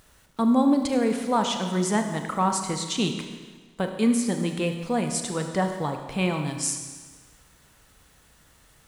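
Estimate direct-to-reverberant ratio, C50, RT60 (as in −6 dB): 5.0 dB, 6.5 dB, 1.4 s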